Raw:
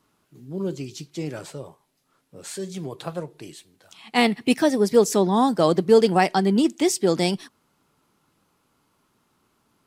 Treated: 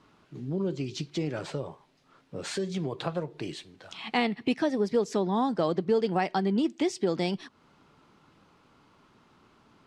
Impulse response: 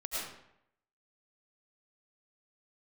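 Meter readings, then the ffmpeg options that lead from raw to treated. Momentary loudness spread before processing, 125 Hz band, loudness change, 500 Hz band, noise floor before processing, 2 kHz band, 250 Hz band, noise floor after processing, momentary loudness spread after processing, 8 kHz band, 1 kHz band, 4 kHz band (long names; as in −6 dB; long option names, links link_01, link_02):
19 LU, −4.5 dB, −8.0 dB, −8.0 dB, −69 dBFS, −7.0 dB, −6.5 dB, −63 dBFS, 13 LU, −13.0 dB, −7.5 dB, −7.0 dB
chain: -af "lowpass=4300,acompressor=threshold=-38dB:ratio=2.5,volume=7dB"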